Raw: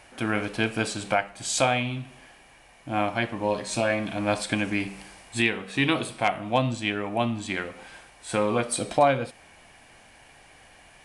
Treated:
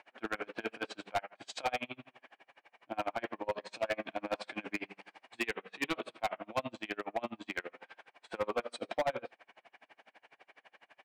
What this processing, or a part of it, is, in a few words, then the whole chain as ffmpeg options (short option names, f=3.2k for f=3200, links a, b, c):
helicopter radio: -af "highpass=390,lowpass=2.8k,aeval=exprs='val(0)*pow(10,-33*(0.5-0.5*cos(2*PI*12*n/s))/20)':c=same,asoftclip=type=hard:threshold=-26.5dB"